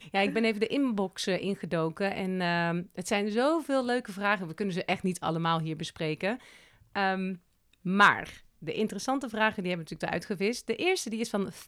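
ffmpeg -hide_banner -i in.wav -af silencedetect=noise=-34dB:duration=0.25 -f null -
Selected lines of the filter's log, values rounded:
silence_start: 6.36
silence_end: 6.96 | silence_duration: 0.60
silence_start: 7.34
silence_end: 7.86 | silence_duration: 0.52
silence_start: 8.30
silence_end: 8.67 | silence_duration: 0.38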